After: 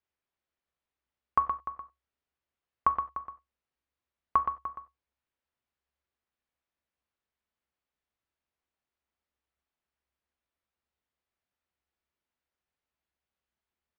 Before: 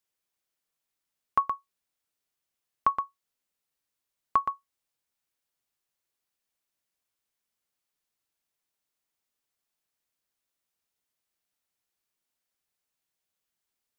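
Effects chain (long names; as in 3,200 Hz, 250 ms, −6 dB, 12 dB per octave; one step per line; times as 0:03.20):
Bessel low-pass filter 2,300 Hz, order 2
parametric band 67 Hz +13.5 dB 0.3 octaves
slap from a distant wall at 51 metres, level −12 dB
on a send at −11 dB: convolution reverb, pre-delay 6 ms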